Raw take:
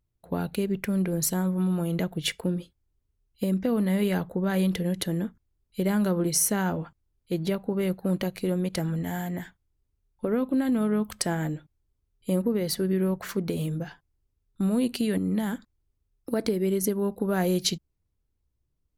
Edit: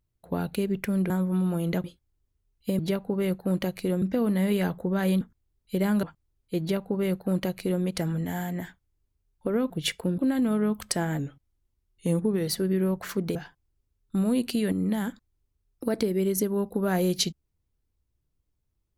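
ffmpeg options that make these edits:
-filter_complex "[0:a]asplit=12[s0][s1][s2][s3][s4][s5][s6][s7][s8][s9][s10][s11];[s0]atrim=end=1.102[s12];[s1]atrim=start=1.358:end=2.102[s13];[s2]atrim=start=2.578:end=3.532[s14];[s3]atrim=start=7.378:end=8.612[s15];[s4]atrim=start=3.528:end=4.722[s16];[s5]atrim=start=5.258:end=6.082[s17];[s6]atrim=start=6.808:end=10.482[s18];[s7]atrim=start=2.098:end=2.582[s19];[s8]atrim=start=10.478:end=11.494[s20];[s9]atrim=start=11.49:end=12.67,asetpts=PTS-STARTPTS,asetrate=40572,aresample=44100,atrim=end_sample=56563,asetpts=PTS-STARTPTS[s21];[s10]atrim=start=12.666:end=13.552[s22];[s11]atrim=start=13.808[s23];[s12][s13]acrossfade=d=0.004:c1=hsin:c2=hsin[s24];[s24][s14]acrossfade=d=0.004:c1=hsin:c2=hsin[s25];[s25][s15]acrossfade=d=0.004:c1=hsin:c2=hsin[s26];[s26][s16]acrossfade=d=0.004:c1=hsin:c2=hsin[s27];[s27][s17]acrossfade=d=0.004:c1=hsin:c2=hsin[s28];[s28][s18]acrossfade=d=0.004:c1=hsin:c2=hsin[s29];[s29][s19]acrossfade=d=0.004:c1=hsin:c2=hsin[s30];[s30][s20]acrossfade=d=0.004:c1=hsin:c2=hsin[s31];[s31][s21]acrossfade=d=0.004:c1=hsin:c2=hsin[s32];[s32][s22]acrossfade=d=0.004:c1=hsin:c2=hsin[s33];[s33][s23]acrossfade=d=0.004:c1=hsin:c2=hsin"

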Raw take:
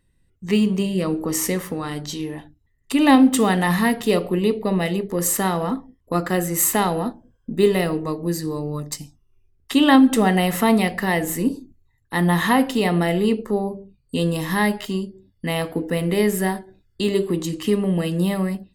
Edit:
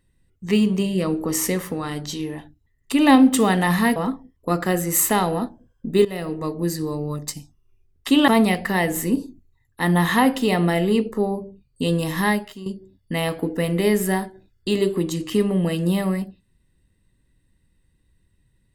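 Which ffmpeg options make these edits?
-filter_complex "[0:a]asplit=5[s0][s1][s2][s3][s4];[s0]atrim=end=3.962[s5];[s1]atrim=start=5.598:end=7.69,asetpts=PTS-STARTPTS,afade=t=out:st=2.088:d=0.004:c=hsin:silence=0.16788[s6];[s2]atrim=start=7.69:end=9.922,asetpts=PTS-STARTPTS,afade=t=in:d=0.47:silence=0.16788[s7];[s3]atrim=start=10.608:end=14.99,asetpts=PTS-STARTPTS,afade=t=out:st=4.012:d=0.37:c=qua:silence=0.237137[s8];[s4]atrim=start=14.99,asetpts=PTS-STARTPTS,afade=t=in:d=0.004:c=hsin:silence=0.237137[s9];[s6][s7]concat=n=2:v=0:a=1[s10];[s5][s10]acrossfade=d=0.004:c1=hsin:c2=hsin[s11];[s8][s9]concat=n=2:v=0:a=1[s12];[s11][s12]acrossfade=d=0.004:c1=hsin:c2=hsin"

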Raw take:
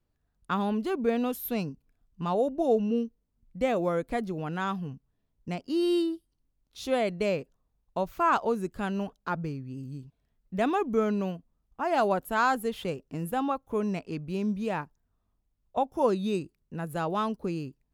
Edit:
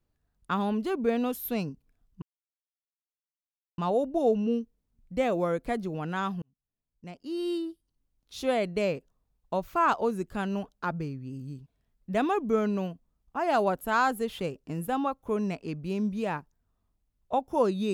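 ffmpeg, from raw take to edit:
-filter_complex "[0:a]asplit=3[s0][s1][s2];[s0]atrim=end=2.22,asetpts=PTS-STARTPTS,afade=t=out:st=2.216:d=0.004:c=hsin,apad=pad_dur=1.56[s3];[s1]atrim=start=2.22:end=4.86,asetpts=PTS-STARTPTS,afade=t=in:d=0.004:c=hsin,afade=t=out:st=2.636:d=0.004:c=hsin[s4];[s2]atrim=start=4.86,asetpts=PTS-STARTPTS,afade=t=in:d=1.97[s5];[s3][s4][s5]concat=n=3:v=0:a=1"

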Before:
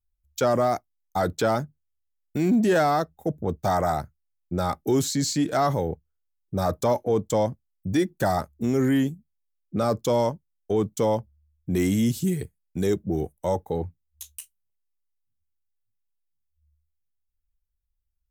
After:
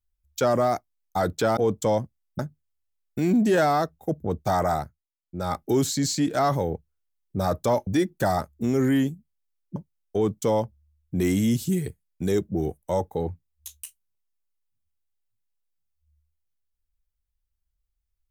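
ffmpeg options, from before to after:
-filter_complex "[0:a]asplit=7[s0][s1][s2][s3][s4][s5][s6];[s0]atrim=end=1.572[s7];[s1]atrim=start=7.048:end=7.872[s8];[s2]atrim=start=1.568:end=4.26,asetpts=PTS-STARTPTS,afade=t=out:st=2.362:d=0.33:silence=0.125893[s9];[s3]atrim=start=4.26:end=4.41,asetpts=PTS-STARTPTS,volume=0.126[s10];[s4]atrim=start=4.41:end=7.052,asetpts=PTS-STARTPTS,afade=t=in:d=0.33:silence=0.125893[s11];[s5]atrim=start=7.868:end=9.762[s12];[s6]atrim=start=10.308[s13];[s7][s8]acrossfade=d=0.004:c1=hsin:c2=hsin[s14];[s9][s10][s11]concat=n=3:v=0:a=1[s15];[s14][s15]acrossfade=d=0.004:c1=hsin:c2=hsin[s16];[s16][s12]acrossfade=d=0.004:c1=hsin:c2=hsin[s17];[s17][s13]acrossfade=d=0.004:c1=hsin:c2=hsin"

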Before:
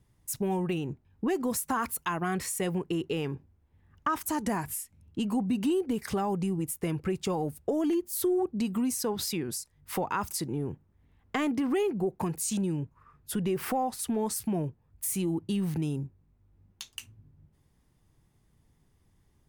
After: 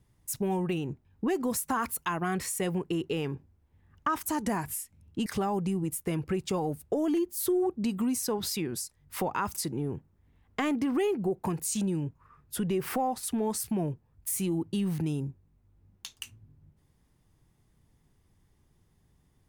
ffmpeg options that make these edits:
-filter_complex "[0:a]asplit=2[s0][s1];[s0]atrim=end=5.262[s2];[s1]atrim=start=6.018[s3];[s2][s3]acrossfade=d=0.004:c1=hsin:c2=hsin"

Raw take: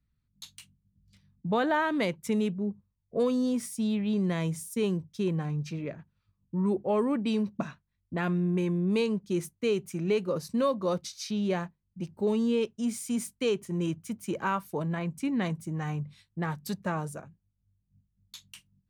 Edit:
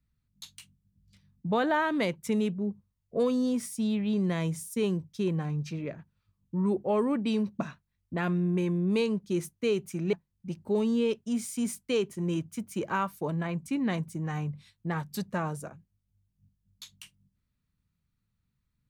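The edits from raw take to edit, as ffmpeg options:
-filter_complex "[0:a]asplit=2[s0][s1];[s0]atrim=end=10.132[s2];[s1]atrim=start=11.648[s3];[s2][s3]acrossfade=d=0.004:c1=hsin:c2=hsin"

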